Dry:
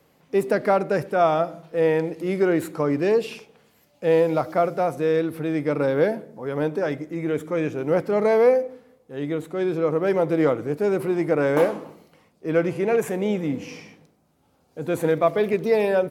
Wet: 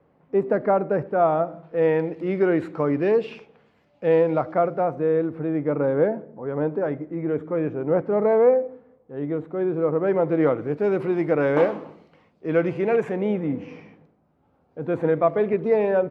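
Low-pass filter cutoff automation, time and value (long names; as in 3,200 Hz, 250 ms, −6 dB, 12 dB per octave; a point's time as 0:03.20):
0:01.45 1,300 Hz
0:01.87 2,500 Hz
0:04.10 2,500 Hz
0:05.10 1,300 Hz
0:09.76 1,300 Hz
0:10.99 3,200 Hz
0:12.86 3,200 Hz
0:13.47 1,700 Hz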